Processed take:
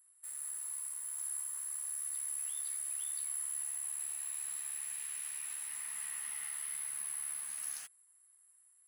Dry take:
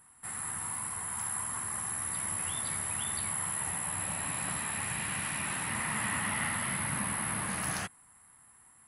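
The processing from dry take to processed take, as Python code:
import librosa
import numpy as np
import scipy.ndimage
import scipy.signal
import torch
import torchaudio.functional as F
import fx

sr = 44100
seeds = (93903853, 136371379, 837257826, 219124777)

p1 = fx.quant_dither(x, sr, seeds[0], bits=6, dither='none')
p2 = x + (p1 * librosa.db_to_amplitude(-12.0))
p3 = np.diff(p2, prepend=0.0)
y = p3 * librosa.db_to_amplitude(-8.0)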